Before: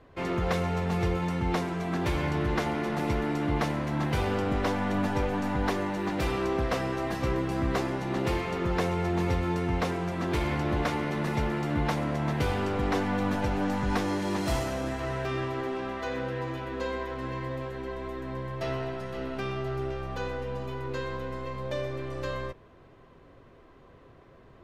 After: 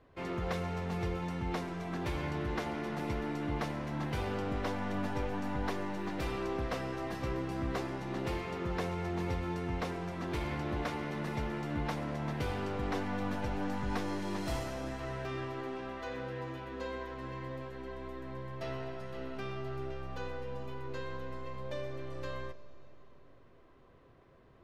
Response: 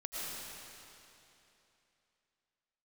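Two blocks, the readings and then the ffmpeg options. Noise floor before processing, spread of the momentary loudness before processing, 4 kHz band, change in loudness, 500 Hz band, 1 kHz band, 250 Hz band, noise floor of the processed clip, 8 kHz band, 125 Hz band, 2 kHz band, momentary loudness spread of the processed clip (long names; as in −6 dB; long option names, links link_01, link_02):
−54 dBFS, 7 LU, −7.0 dB, −7.5 dB, −7.5 dB, −7.5 dB, −7.5 dB, −59 dBFS, −8.0 dB, −7.5 dB, −7.5 dB, 7 LU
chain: -filter_complex "[0:a]asplit=2[link_01][link_02];[link_02]lowpass=frequency=6000:width_type=q:width=2.4[link_03];[1:a]atrim=start_sample=2205[link_04];[link_03][link_04]afir=irnorm=-1:irlink=0,volume=-19dB[link_05];[link_01][link_05]amix=inputs=2:normalize=0,volume=-8dB"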